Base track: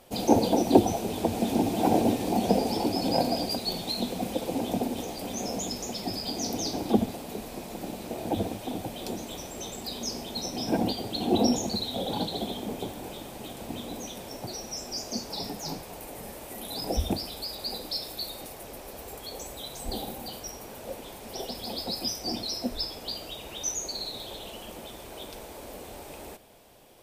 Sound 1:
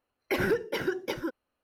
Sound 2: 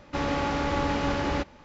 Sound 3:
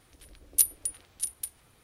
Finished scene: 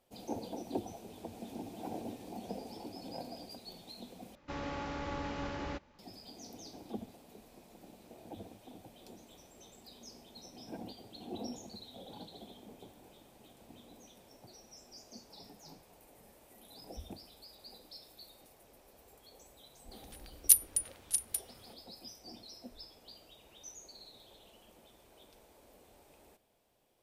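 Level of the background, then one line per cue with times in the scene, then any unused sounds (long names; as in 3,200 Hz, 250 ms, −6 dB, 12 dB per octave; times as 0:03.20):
base track −19 dB
0:04.35: overwrite with 2 −12.5 dB
0:19.91: mix in 3
not used: 1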